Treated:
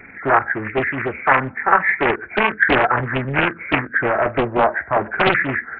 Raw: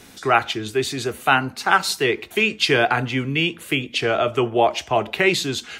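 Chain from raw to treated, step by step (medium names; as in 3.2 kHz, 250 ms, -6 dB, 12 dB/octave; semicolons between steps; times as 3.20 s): knee-point frequency compression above 1.3 kHz 4:1; loudspeaker Doppler distortion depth 0.9 ms; trim +1.5 dB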